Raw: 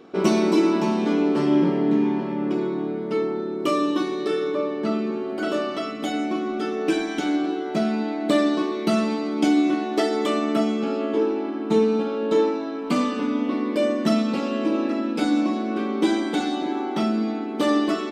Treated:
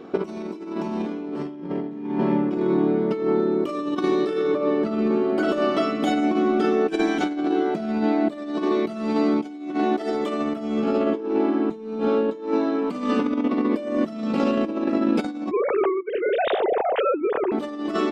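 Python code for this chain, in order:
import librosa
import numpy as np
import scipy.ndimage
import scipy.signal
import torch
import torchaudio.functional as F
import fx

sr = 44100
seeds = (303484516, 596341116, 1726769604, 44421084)

y = fx.sine_speech(x, sr, at=(15.51, 17.52))
y = fx.high_shelf(y, sr, hz=2300.0, db=-7.5)
y = fx.over_compress(y, sr, threshold_db=-26.0, ratio=-0.5)
y = y * librosa.db_to_amplitude(3.5)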